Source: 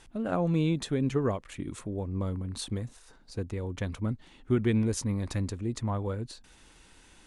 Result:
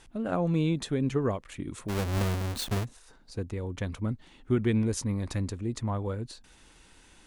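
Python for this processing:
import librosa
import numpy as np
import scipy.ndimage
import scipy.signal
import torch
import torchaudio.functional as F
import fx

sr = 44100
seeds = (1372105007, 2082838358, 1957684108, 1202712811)

y = fx.halfwave_hold(x, sr, at=(1.88, 2.83), fade=0.02)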